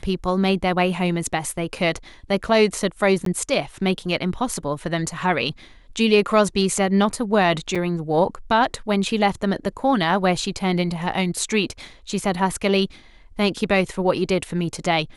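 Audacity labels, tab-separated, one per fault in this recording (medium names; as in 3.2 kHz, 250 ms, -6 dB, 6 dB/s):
3.250000	3.260000	dropout 13 ms
7.750000	7.760000	dropout 5.6 ms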